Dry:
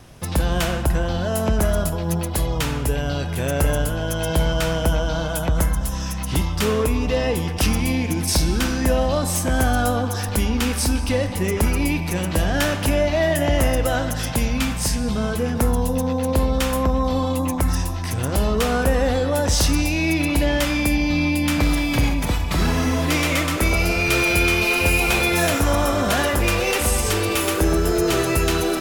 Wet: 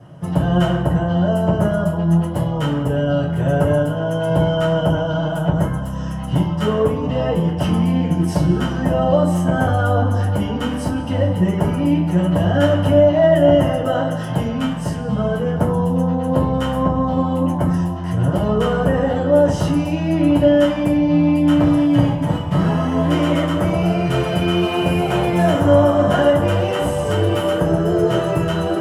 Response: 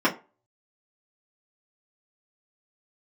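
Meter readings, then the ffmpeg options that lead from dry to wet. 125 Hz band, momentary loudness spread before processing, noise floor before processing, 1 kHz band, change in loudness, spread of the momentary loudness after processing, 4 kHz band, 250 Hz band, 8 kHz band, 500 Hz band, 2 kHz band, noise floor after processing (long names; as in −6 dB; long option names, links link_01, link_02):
+4.5 dB, 5 LU, −26 dBFS, +3.0 dB, +3.0 dB, 7 LU, −4.0 dB, +5.5 dB, −14.0 dB, +5.5 dB, −5.0 dB, −24 dBFS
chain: -filter_complex "[1:a]atrim=start_sample=2205,asetrate=24696,aresample=44100[link_01];[0:a][link_01]afir=irnorm=-1:irlink=0,volume=-18dB"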